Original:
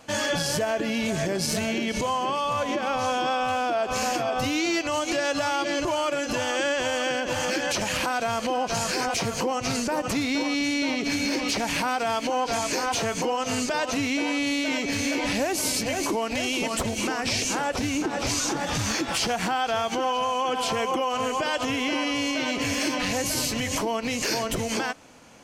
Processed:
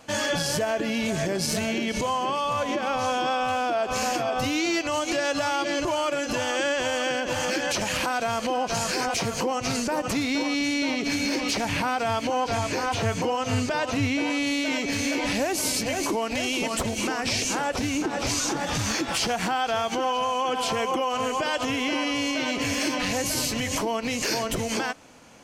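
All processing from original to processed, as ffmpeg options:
-filter_complex "[0:a]asettb=1/sr,asplit=3[a][b][c];[a]atrim=end=11.654[d];[b]atrim=start=11.65:end=14.3,asetpts=PTS-STARTPTS,afade=t=in:d=0.004:c=qsin,afade=t=out:st=2.646:d=0.004:c=qsin,acrossover=split=3900[e][f];[f]acompressor=threshold=-38dB:ratio=4:attack=1:release=60[g];[e][g]amix=inputs=2:normalize=0,equalizer=f=100:w=2:g=13.5[h];[c]atrim=start=14.296[i];[d][h]acrossfade=d=0.004:c1=hsin:c2=qsin[j];[j][i]acrossfade=d=0.004:c1=qsin:c2=hsin"

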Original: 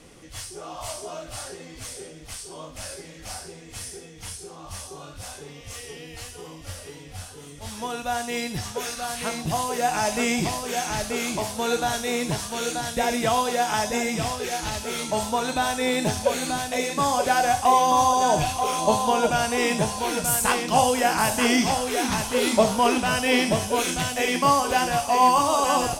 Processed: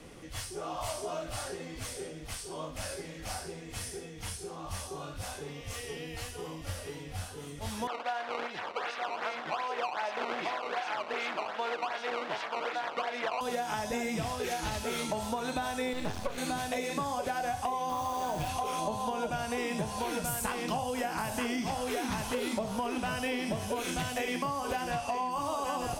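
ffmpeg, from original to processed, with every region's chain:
-filter_complex "[0:a]asettb=1/sr,asplit=3[a][b][c];[a]atrim=end=7.874[d];[b]atrim=start=7.87:end=13.41,asetpts=PTS-STARTPTS,afade=t=in:d=0.004:c=qsin,afade=t=out:st=5.536:d=0.004:c=qsin,acrusher=samples=15:mix=1:aa=0.000001:lfo=1:lforange=24:lforate=2.6,highpass=610,lowpass=3.7k[e];[c]atrim=start=13.406[f];[d][e]acrossfade=d=0.004:c1=hsin:c2=qsin[g];[g][f]acrossfade=d=0.004:c1=qsin:c2=hsin,asettb=1/sr,asplit=3[h][i][j];[h]atrim=end=15.934[k];[i]atrim=start=15.93:end=16.38,asetpts=PTS-STARTPTS,afade=t=in:d=0.004:c=qsin,afade=t=out:st=0.446:d=0.004:c=qsin,acrossover=split=6100[l][m];[m]acompressor=threshold=-44dB:ratio=4:attack=1:release=60[n];[l][n]amix=inputs=2:normalize=0,aeval=exprs='max(val(0),0)':c=same[o];[j]atrim=start=16.376[p];[k][o]acrossfade=d=0.004:c1=hsin:c2=qsin[q];[q][p]acrossfade=d=0.004:c1=qsin:c2=hsin,asettb=1/sr,asplit=3[r][s][t];[r]atrim=end=17.894[u];[s]atrim=start=17.89:end=18.49,asetpts=PTS-STARTPTS,afade=t=in:d=0.004:c=qsin,afade=t=out:st=0.596:d=0.004:c=qsin,tremolo=f=180:d=0.462,acrusher=bits=4:mix=0:aa=0.5[v];[t]atrim=start=18.486[w];[u][v]acrossfade=d=0.004:c1=hsin:c2=qsin[x];[x][w]acrossfade=d=0.004:c1=qsin:c2=hsin,asettb=1/sr,asplit=3[y][z][aa];[y]atrim=end=24.914[ab];[z]atrim=start=24.91:end=25.31,asetpts=PTS-STARTPTS,afade=t=in:d=0.004:c=qsin,afade=t=out:st=0.396:d=0.004:c=qsin,acrossover=split=9900[ac][ad];[ad]acompressor=threshold=-55dB:ratio=4:attack=1:release=60[ae];[ac][ae]amix=inputs=2:normalize=0,aeval=exprs='val(0)+0.0126*sin(2*PI*2700*n/s)':c=same[af];[aa]atrim=start=25.306[ag];[ab][af]acrossfade=d=0.004:c1=hsin:c2=qsin[ah];[ah][ag]acrossfade=d=0.004:c1=qsin:c2=hsin,acrossover=split=180[ai][aj];[aj]acompressor=threshold=-23dB:ratio=2.5[ak];[ai][ak]amix=inputs=2:normalize=0,equalizer=f=7.4k:t=o:w=1.8:g=-5.5,acompressor=threshold=-30dB:ratio=6"

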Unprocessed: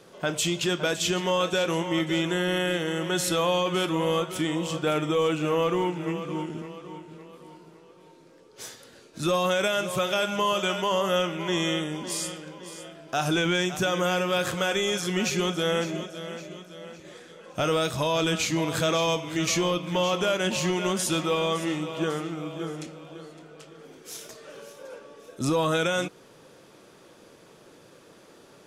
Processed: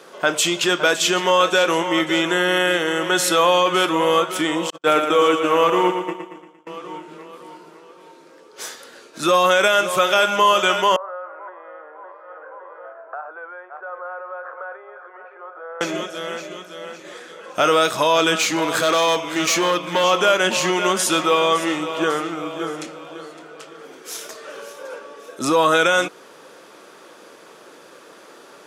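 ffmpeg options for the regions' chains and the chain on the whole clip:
-filter_complex "[0:a]asettb=1/sr,asplit=3[a][b][c];[a]atrim=end=4.704[d];[b]atrim=start=4.7:end=6.67,asetpts=PTS-STARTPTS,afade=t=in:d=0.004:c=qsin,afade=t=out:st=1.966:d=0.004:c=qsin,agate=range=-50dB:threshold=-27dB:ratio=16:release=100:detection=peak,aecho=1:1:115|230|345|460|575|690:0.447|0.228|0.116|0.0593|0.0302|0.0154,atrim=end_sample=86877[e];[c]atrim=start=6.666[f];[d][e]acrossfade=d=0.004:c1=hsin:c2=qsin[g];[g][f]acrossfade=d=0.004:c1=qsin:c2=hsin,asettb=1/sr,asplit=3[h][i][j];[h]atrim=end=10.964[k];[i]atrim=start=10.96:end=15.81,asetpts=PTS-STARTPTS,afade=t=in:d=0.004:c=qsin,afade=t=out:st=4.846:d=0.004:c=qsin,acompressor=threshold=-37dB:ratio=6:attack=3.2:release=140:knee=1:detection=peak,asuperpass=centerf=860:order=8:qfactor=0.79[l];[j]atrim=start=15.806[m];[k][l]acrossfade=d=0.004:c1=hsin:c2=qsin[n];[n][m]acrossfade=d=0.004:c1=qsin:c2=hsin,asettb=1/sr,asplit=3[o][p][q];[o]atrim=end=18.384[r];[p]atrim=start=18.38:end=20.04,asetpts=PTS-STARTPTS,afade=t=in:d=0.004:c=qsin,afade=t=out:st=1.656:d=0.004:c=qsin,highpass=f=99:w=0.5412,highpass=f=99:w=1.3066,asoftclip=type=hard:threshold=-22dB[s];[q]atrim=start=20.036[t];[r][s]acrossfade=d=0.004:c1=hsin:c2=qsin[u];[u][t]acrossfade=d=0.004:c1=qsin:c2=hsin,highpass=300,equalizer=f=1.3k:w=1.2:g=5,volume=7.5dB"

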